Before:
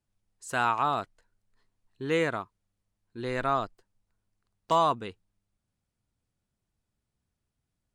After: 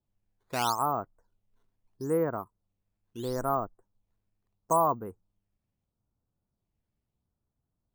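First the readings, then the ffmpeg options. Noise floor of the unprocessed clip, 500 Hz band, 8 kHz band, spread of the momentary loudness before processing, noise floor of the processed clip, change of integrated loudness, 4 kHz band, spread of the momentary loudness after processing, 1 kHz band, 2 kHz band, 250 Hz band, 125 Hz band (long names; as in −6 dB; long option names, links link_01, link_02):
−84 dBFS, 0.0 dB, +5.0 dB, 18 LU, −85 dBFS, −1.5 dB, −3.0 dB, 18 LU, −1.5 dB, −10.5 dB, 0.0 dB, 0.0 dB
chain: -af "lowpass=frequency=1200:width=0.5412,lowpass=frequency=1200:width=1.3066,acrusher=samples=10:mix=1:aa=0.000001:lfo=1:lforange=16:lforate=0.76"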